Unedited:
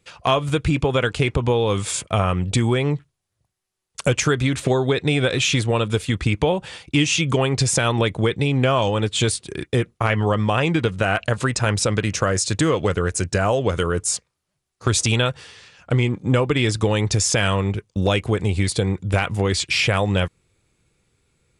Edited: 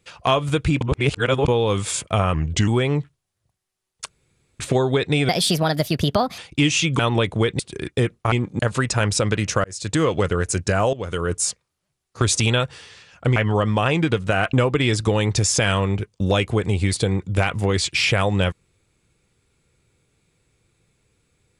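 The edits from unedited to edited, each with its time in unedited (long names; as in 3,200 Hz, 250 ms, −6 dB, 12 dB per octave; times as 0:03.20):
0:00.81–0:01.48: reverse
0:02.34–0:02.63: play speed 86%
0:04.04–0:04.55: fill with room tone
0:05.24–0:06.74: play speed 137%
0:07.35–0:07.82: remove
0:08.42–0:09.35: remove
0:10.08–0:11.25: swap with 0:16.02–0:16.29
0:12.30–0:12.68: fade in
0:13.59–0:14.00: fade in, from −14 dB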